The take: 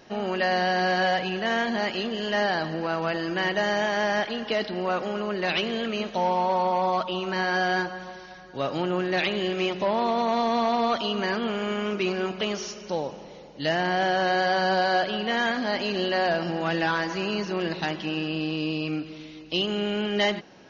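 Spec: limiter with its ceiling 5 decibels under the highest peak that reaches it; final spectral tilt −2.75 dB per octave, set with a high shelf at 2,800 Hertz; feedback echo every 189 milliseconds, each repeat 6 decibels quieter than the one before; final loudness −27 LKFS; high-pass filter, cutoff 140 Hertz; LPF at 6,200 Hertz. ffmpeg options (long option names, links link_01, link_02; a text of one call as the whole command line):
ffmpeg -i in.wav -af "highpass=140,lowpass=6200,highshelf=frequency=2800:gain=-3,alimiter=limit=-18dB:level=0:latency=1,aecho=1:1:189|378|567|756|945|1134:0.501|0.251|0.125|0.0626|0.0313|0.0157" out.wav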